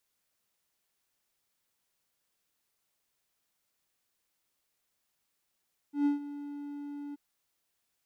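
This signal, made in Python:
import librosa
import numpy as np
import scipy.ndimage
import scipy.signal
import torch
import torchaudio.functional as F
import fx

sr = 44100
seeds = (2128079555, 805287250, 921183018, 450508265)

y = fx.adsr_tone(sr, wave='triangle', hz=288.0, attack_ms=127.0, decay_ms=132.0, sustain_db=-15.5, held_s=1.21, release_ms=21.0, level_db=-20.5)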